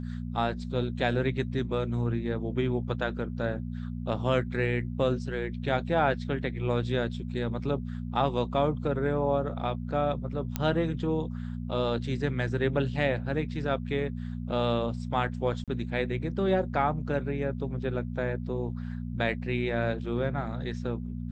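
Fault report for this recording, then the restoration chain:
hum 60 Hz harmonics 4 -35 dBFS
10.56 pop -14 dBFS
15.64–15.68 gap 37 ms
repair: de-click; de-hum 60 Hz, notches 4; interpolate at 15.64, 37 ms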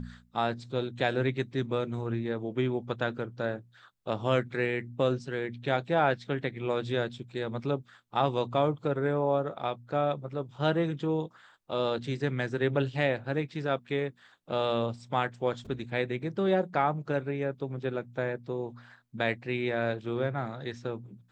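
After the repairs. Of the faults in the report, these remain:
none

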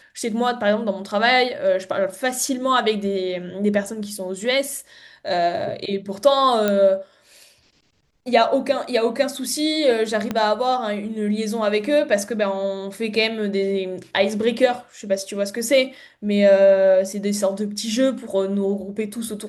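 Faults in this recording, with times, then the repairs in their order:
6.68 pop -7 dBFS
10.31 pop -11 dBFS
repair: de-click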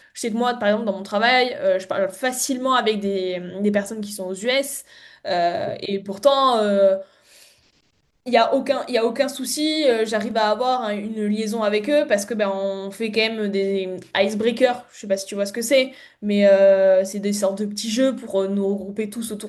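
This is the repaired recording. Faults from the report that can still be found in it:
10.31 pop

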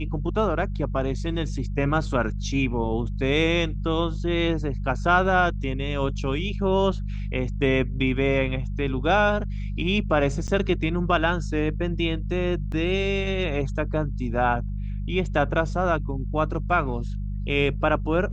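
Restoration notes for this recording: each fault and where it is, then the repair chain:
hum 50 Hz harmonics 4 -29 dBFS
10.47–10.48 gap 8.9 ms
12.72 gap 2.4 ms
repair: de-hum 50 Hz, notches 4; interpolate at 10.47, 8.9 ms; interpolate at 12.72, 2.4 ms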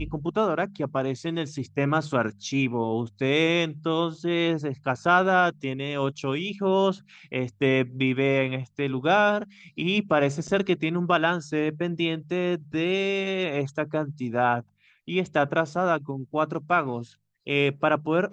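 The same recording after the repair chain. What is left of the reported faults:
none

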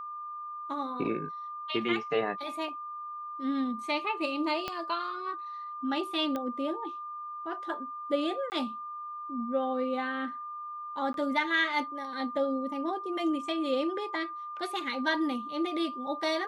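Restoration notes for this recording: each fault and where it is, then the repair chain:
tone 1200 Hz -37 dBFS
4.68 pop -18 dBFS
6.36 pop -21 dBFS
8.5–8.52 gap 19 ms
11.13–11.14 gap 12 ms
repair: de-click; notch 1200 Hz, Q 30; interpolate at 8.5, 19 ms; interpolate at 11.13, 12 ms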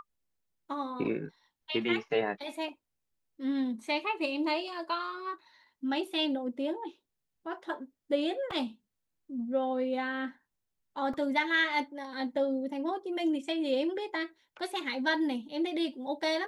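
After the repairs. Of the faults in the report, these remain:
4.68 pop
6.36 pop

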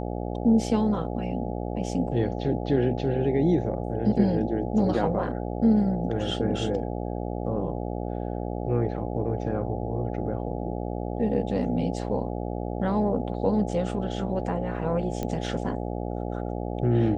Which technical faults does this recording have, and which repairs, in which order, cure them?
buzz 60 Hz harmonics 14 -31 dBFS
15.23 pop -17 dBFS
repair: de-click; de-hum 60 Hz, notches 14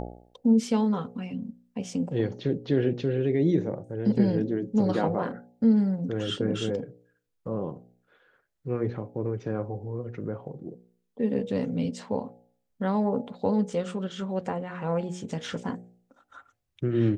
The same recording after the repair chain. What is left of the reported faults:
none

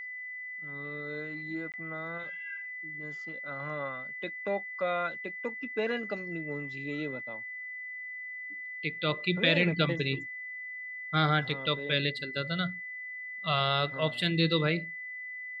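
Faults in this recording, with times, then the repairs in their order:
tone 2000 Hz -38 dBFS
1.72–1.74 gap 18 ms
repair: notch 2000 Hz, Q 30; interpolate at 1.72, 18 ms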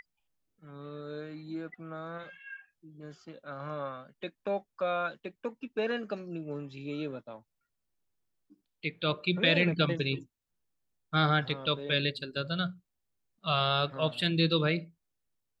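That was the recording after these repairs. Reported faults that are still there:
none

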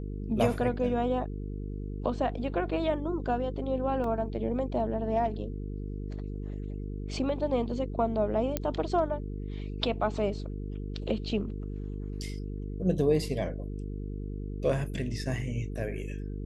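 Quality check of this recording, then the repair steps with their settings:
buzz 50 Hz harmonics 9 -36 dBFS
4.04 gap 2.2 ms
8.57 pop -13 dBFS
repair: de-click; de-hum 50 Hz, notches 9; interpolate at 4.04, 2.2 ms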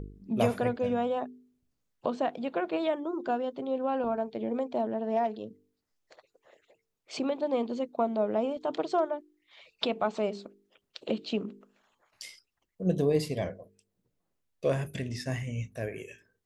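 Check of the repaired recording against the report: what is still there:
none

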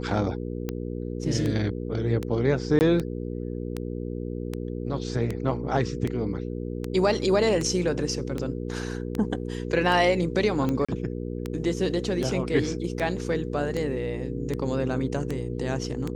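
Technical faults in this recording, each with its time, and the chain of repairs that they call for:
hum 60 Hz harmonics 8 -32 dBFS
tick 78 rpm -16 dBFS
2.79–2.81 gap 19 ms
10.85–10.88 gap 35 ms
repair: de-click; de-hum 60 Hz, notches 8; interpolate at 2.79, 19 ms; interpolate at 10.85, 35 ms

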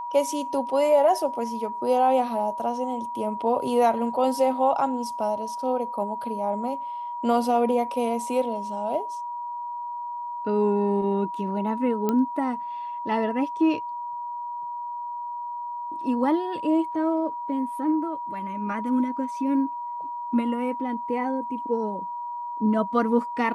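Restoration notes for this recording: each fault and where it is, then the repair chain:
tone 960 Hz -30 dBFS
12.09 pop -12 dBFS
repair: de-click; notch 960 Hz, Q 30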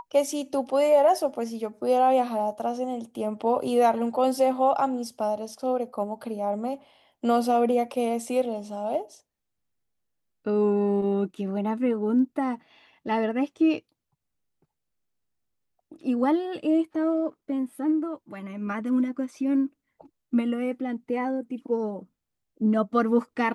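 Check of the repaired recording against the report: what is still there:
none

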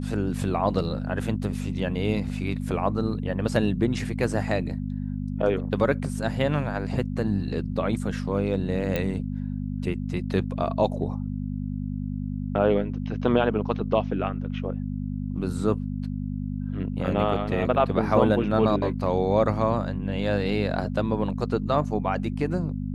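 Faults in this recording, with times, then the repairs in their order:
hum 50 Hz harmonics 5 -30 dBFS
8.96 pop -13 dBFS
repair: de-click; de-hum 50 Hz, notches 5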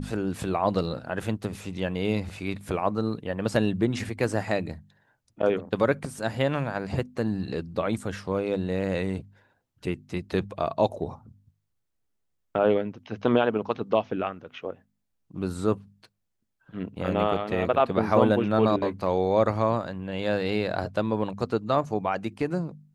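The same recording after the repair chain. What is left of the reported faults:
none

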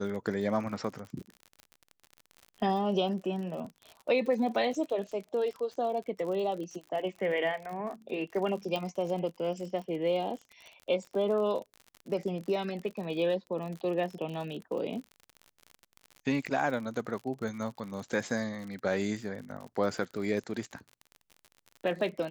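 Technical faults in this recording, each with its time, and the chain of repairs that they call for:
crackle 51/s -38 dBFS
8.76 pop -21 dBFS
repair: de-click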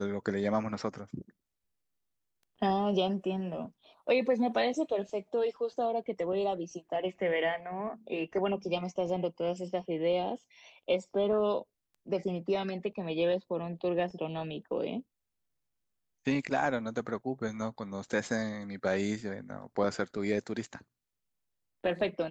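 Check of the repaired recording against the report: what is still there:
8.76 pop

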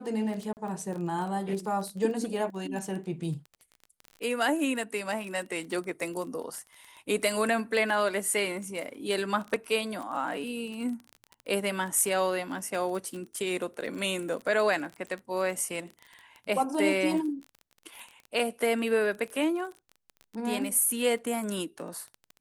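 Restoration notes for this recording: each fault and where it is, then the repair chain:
crackle 23/s -34 dBFS
0.53–0.57 gap 39 ms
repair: de-click; interpolate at 0.53, 39 ms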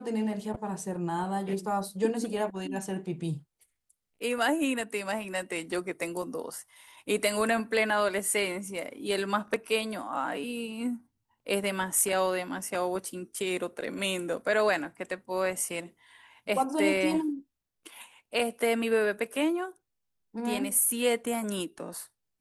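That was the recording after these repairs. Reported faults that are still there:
none

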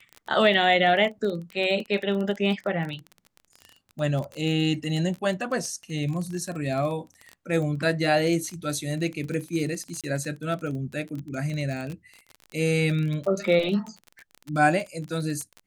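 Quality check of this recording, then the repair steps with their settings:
crackle 24/s -30 dBFS
10.01–10.04 gap 27 ms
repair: de-click; interpolate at 10.01, 27 ms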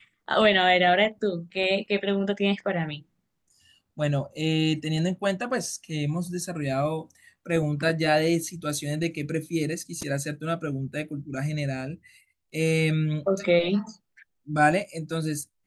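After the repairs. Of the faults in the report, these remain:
none

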